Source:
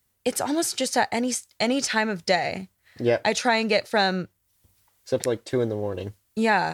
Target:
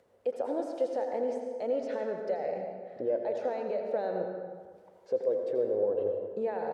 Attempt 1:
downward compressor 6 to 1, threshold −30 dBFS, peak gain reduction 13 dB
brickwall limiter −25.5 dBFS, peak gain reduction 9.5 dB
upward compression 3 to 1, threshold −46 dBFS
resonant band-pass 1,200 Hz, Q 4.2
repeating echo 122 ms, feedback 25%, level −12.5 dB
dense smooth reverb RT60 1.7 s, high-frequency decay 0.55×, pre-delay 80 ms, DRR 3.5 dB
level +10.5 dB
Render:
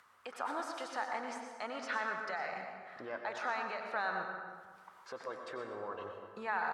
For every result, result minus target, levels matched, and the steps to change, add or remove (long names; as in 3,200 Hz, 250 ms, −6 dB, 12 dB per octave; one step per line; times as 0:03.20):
echo 40 ms late; 1,000 Hz band +9.5 dB
change: repeating echo 82 ms, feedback 25%, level −12.5 dB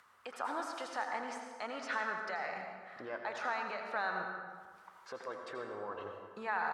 1,000 Hz band +9.5 dB
change: resonant band-pass 520 Hz, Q 4.2